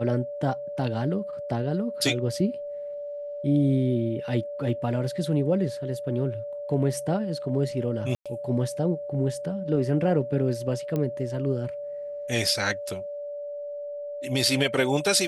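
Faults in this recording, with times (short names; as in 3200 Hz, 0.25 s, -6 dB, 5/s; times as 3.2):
tone 580 Hz -32 dBFS
8.15–8.26 gap 0.106 s
10.96 pop -17 dBFS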